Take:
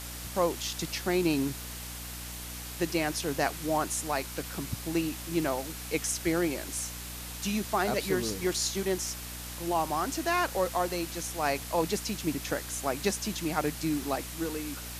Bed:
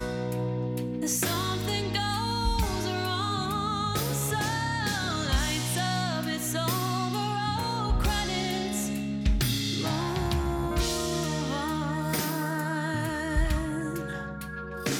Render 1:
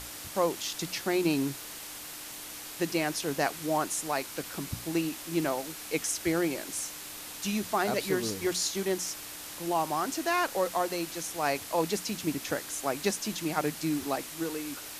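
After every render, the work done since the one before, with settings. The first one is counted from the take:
mains-hum notches 60/120/180/240 Hz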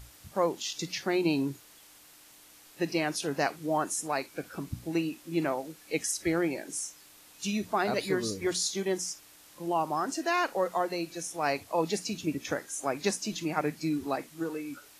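noise reduction from a noise print 13 dB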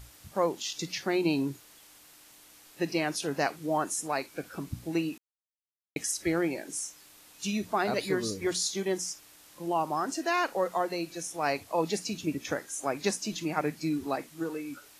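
0:05.18–0:05.96: silence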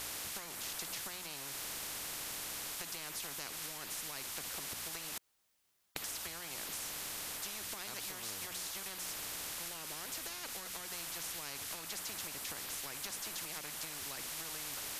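downward compressor, threshold −35 dBFS, peak gain reduction 13 dB
every bin compressed towards the loudest bin 10 to 1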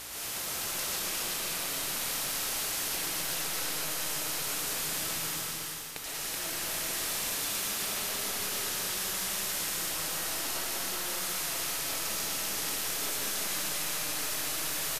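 on a send: single-tap delay 379 ms −3 dB
on the sum: comb and all-pass reverb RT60 3 s, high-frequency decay 1×, pre-delay 75 ms, DRR −7 dB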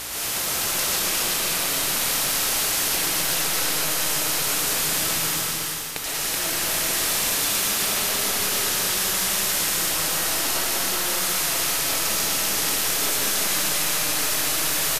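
level +10 dB

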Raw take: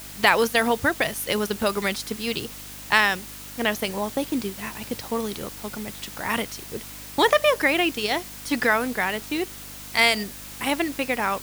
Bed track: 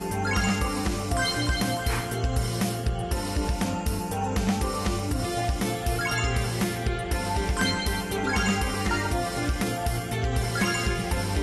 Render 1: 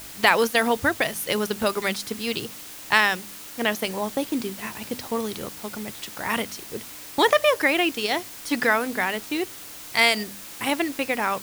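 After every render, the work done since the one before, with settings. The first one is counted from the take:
hum removal 50 Hz, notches 5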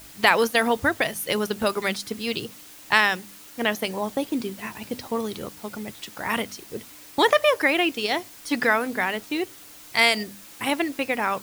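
broadband denoise 6 dB, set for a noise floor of −40 dBFS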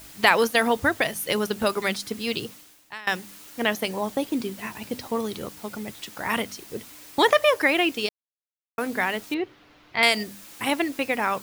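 0:02.48–0:03.07: fade out quadratic, to −22.5 dB
0:08.09–0:08.78: silence
0:09.34–0:10.03: high-frequency loss of the air 310 metres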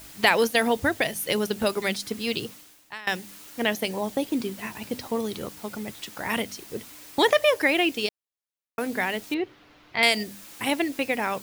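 dynamic equaliser 1,200 Hz, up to −6 dB, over −39 dBFS, Q 1.8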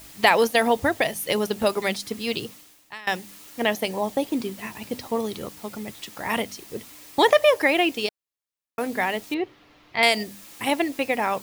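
notch filter 1,500 Hz, Q 15
dynamic equaliser 800 Hz, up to +5 dB, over −34 dBFS, Q 0.94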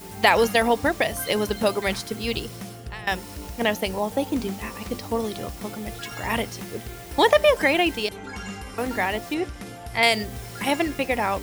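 mix in bed track −10.5 dB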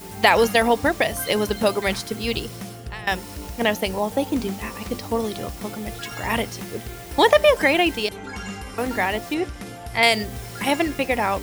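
level +2 dB
brickwall limiter −1 dBFS, peak gain reduction 1 dB

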